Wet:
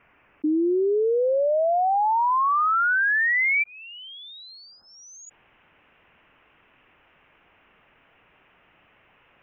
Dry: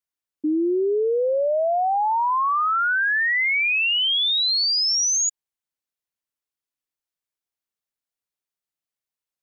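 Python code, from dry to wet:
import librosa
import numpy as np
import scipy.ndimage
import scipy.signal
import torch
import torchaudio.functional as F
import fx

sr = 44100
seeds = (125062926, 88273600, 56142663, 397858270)

y = fx.ellip_lowpass(x, sr, hz=fx.steps((0.0, 2600.0), (3.62, 1500.0), (5.25, 2800.0)), order=4, stop_db=40)
y = fx.env_flatten(y, sr, amount_pct=50)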